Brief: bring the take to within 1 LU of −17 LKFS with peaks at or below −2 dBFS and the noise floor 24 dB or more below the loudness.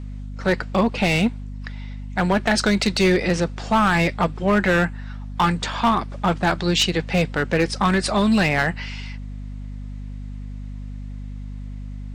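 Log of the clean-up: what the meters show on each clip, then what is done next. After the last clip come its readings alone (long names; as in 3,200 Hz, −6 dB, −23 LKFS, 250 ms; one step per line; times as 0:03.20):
share of clipped samples 1.1%; peaks flattened at −11.5 dBFS; mains hum 50 Hz; hum harmonics up to 250 Hz; level of the hum −30 dBFS; integrated loudness −20.5 LKFS; sample peak −11.5 dBFS; target loudness −17.0 LKFS
→ clipped peaks rebuilt −11.5 dBFS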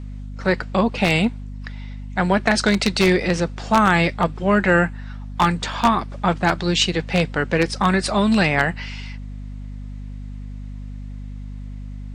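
share of clipped samples 0.0%; mains hum 50 Hz; hum harmonics up to 250 Hz; level of the hum −30 dBFS
→ hum removal 50 Hz, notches 5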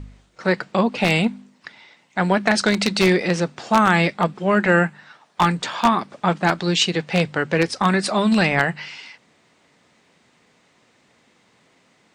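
mains hum none found; integrated loudness −19.5 LKFS; sample peak −2.0 dBFS; target loudness −17.0 LKFS
→ level +2.5 dB
brickwall limiter −2 dBFS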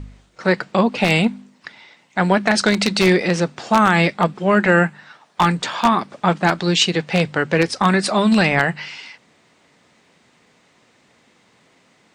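integrated loudness −17.5 LKFS; sample peak −2.0 dBFS; background noise floor −58 dBFS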